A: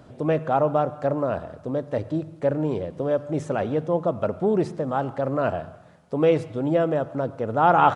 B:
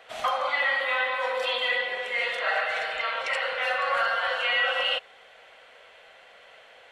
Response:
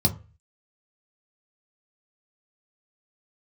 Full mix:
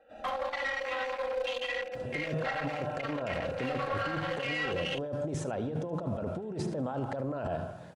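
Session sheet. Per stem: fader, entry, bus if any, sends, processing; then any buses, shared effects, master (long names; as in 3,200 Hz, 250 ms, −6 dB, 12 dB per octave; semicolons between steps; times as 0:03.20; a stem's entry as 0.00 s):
−3.0 dB, 1.95 s, no send, echo send −16 dB, parametric band 2,000 Hz −4 dB 0.38 octaves; notch filter 1,200 Hz, Q 8.6; compressor whose output falls as the input rises −31 dBFS, ratio −1
−2.0 dB, 0.00 s, no send, no echo send, adaptive Wiener filter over 41 samples; comb filter 3.7 ms, depth 86%; tube saturation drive 16 dB, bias 0.4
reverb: not used
echo: single-tap delay 75 ms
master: brickwall limiter −24 dBFS, peak gain reduction 8.5 dB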